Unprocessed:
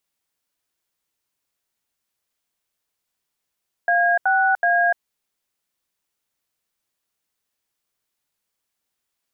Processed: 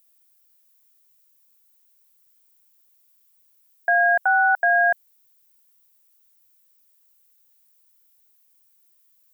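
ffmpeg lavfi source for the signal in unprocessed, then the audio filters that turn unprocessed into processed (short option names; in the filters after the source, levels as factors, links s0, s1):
-f lavfi -i "aevalsrc='0.133*clip(min(mod(t,0.375),0.296-mod(t,0.375))/0.002,0,1)*(eq(floor(t/0.375),0)*(sin(2*PI*697*mod(t,0.375))+sin(2*PI*1633*mod(t,0.375)))+eq(floor(t/0.375),1)*(sin(2*PI*770*mod(t,0.375))+sin(2*PI*1477*mod(t,0.375)))+eq(floor(t/0.375),2)*(sin(2*PI*697*mod(t,0.375))+sin(2*PI*1633*mod(t,0.375))))':d=1.125:s=44100"
-af "aemphasis=mode=production:type=bsi"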